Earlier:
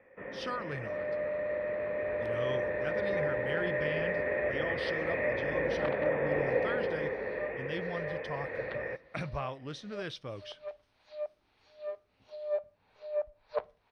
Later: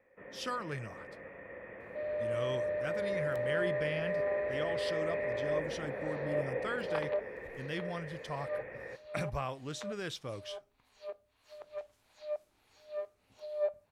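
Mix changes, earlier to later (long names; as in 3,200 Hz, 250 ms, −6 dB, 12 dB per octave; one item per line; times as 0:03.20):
first sound −7.5 dB
second sound: entry +1.10 s
master: remove Savitzky-Golay smoothing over 15 samples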